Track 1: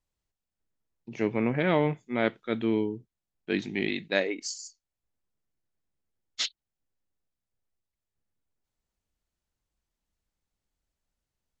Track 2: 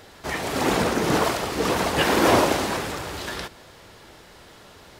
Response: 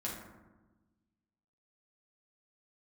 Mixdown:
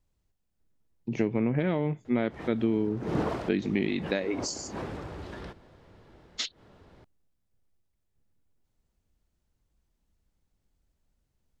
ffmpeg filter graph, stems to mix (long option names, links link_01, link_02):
-filter_complex "[0:a]acompressor=threshold=-31dB:ratio=12,volume=2dB,asplit=2[link_01][link_02];[1:a]aemphasis=mode=reproduction:type=75fm,adelay=2050,volume=-13.5dB[link_03];[link_02]apad=whole_len=310606[link_04];[link_03][link_04]sidechaincompress=threshold=-52dB:ratio=10:attack=40:release=115[link_05];[link_01][link_05]amix=inputs=2:normalize=0,lowshelf=frequency=500:gain=10"